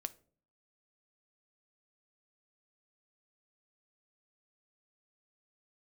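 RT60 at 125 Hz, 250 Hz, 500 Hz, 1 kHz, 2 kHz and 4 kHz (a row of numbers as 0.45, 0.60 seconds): 0.70, 0.65, 0.55, 0.40, 0.30, 0.25 seconds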